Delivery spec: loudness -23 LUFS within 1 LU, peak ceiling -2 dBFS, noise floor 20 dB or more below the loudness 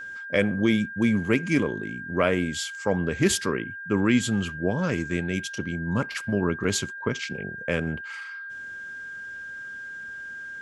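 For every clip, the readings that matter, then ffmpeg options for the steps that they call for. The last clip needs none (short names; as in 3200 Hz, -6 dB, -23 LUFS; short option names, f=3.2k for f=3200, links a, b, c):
steady tone 1600 Hz; tone level -35 dBFS; loudness -27.0 LUFS; peak -7.5 dBFS; loudness target -23.0 LUFS
-> -af "bandreject=f=1.6k:w=30"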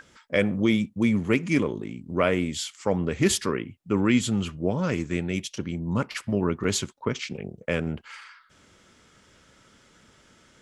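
steady tone none; loudness -26.5 LUFS; peak -7.5 dBFS; loudness target -23.0 LUFS
-> -af "volume=3.5dB"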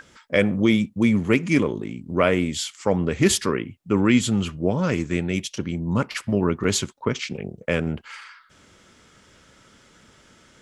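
loudness -23.0 LUFS; peak -4.0 dBFS; noise floor -55 dBFS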